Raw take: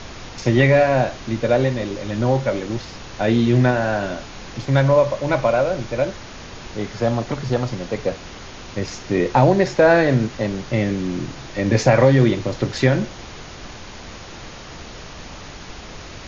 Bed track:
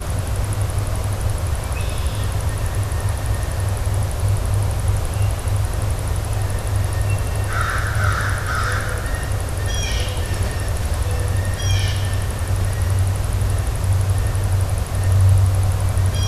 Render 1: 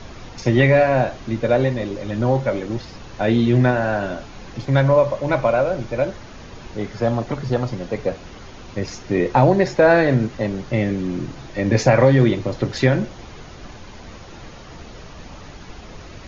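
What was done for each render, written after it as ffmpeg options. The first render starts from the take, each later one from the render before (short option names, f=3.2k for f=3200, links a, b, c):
-af "afftdn=nr=7:nf=-37"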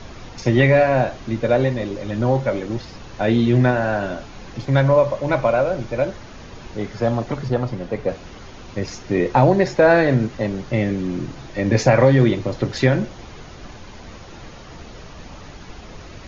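-filter_complex "[0:a]asettb=1/sr,asplit=3[a][b][c];[a]atrim=end=7.484[d];[b]atrim=start=7.48:end=8.09,asetpts=PTS-STARTPTS,afade=t=in:d=0.004:c=qsin,afade=t=out:st=0.606:d=0.004:c=qsin,highshelf=f=5.1k:g=-10.5[e];[c]atrim=start=8.086[f];[d][e]acrossfade=d=0.004:c1=hsin:c2=qsin[g];[g][f]acrossfade=d=0.004:c1=qsin:c2=hsin"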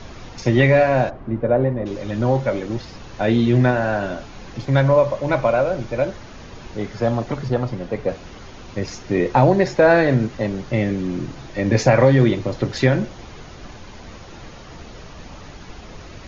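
-filter_complex "[0:a]asplit=3[a][b][c];[a]afade=t=out:st=1.09:d=0.02[d];[b]lowpass=1.2k,afade=t=in:st=1.09:d=0.02,afade=t=out:st=1.85:d=0.02[e];[c]afade=t=in:st=1.85:d=0.02[f];[d][e][f]amix=inputs=3:normalize=0"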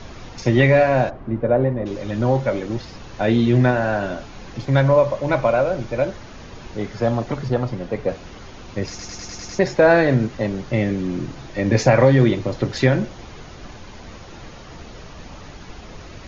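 -filter_complex "[0:a]asplit=8[a][b][c][d][e][f][g][h];[a]atrim=end=8.992[i];[b]atrim=start=8.888:end=8.992[j];[c]atrim=start=8.888:end=8.992[k];[d]atrim=start=8.888:end=8.992[l];[e]atrim=start=8.888:end=8.992[m];[f]atrim=start=8.888:end=8.992[n];[g]atrim=start=8.888:end=8.992[o];[h]atrim=start=9.588[p];[i][j]acrossfade=d=0.004:c1=hsin:c2=hsin[q];[q][k]acrossfade=d=0.004:c1=hsin:c2=hsin[r];[r][l]acrossfade=d=0.004:c1=hsin:c2=hsin[s];[s][m]acrossfade=d=0.004:c1=hsin:c2=hsin[t];[t][n]acrossfade=d=0.004:c1=hsin:c2=hsin[u];[u][o]acrossfade=d=0.004:c1=hsin:c2=hsin[v];[v][p]acrossfade=d=0.004:c1=hsin:c2=hsin"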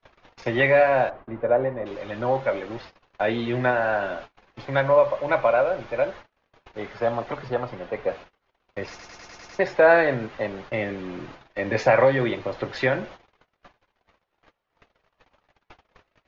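-filter_complex "[0:a]agate=range=-36dB:threshold=-33dB:ratio=16:detection=peak,acrossover=split=450 3700:gain=0.2 1 0.126[a][b][c];[a][b][c]amix=inputs=3:normalize=0"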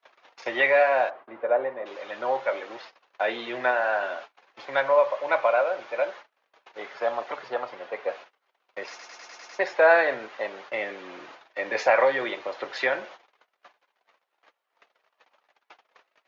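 -af "highpass=560"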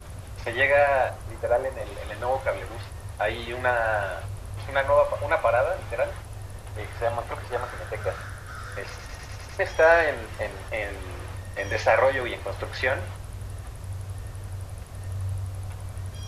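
-filter_complex "[1:a]volume=-17dB[a];[0:a][a]amix=inputs=2:normalize=0"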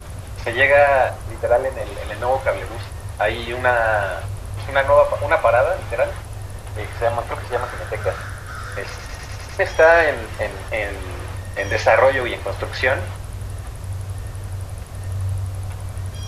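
-af "volume=6.5dB,alimiter=limit=-2dB:level=0:latency=1"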